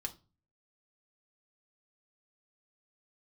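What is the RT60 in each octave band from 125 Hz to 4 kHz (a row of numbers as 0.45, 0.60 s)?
0.60, 0.50, 0.35, 0.30, 0.25, 0.25 s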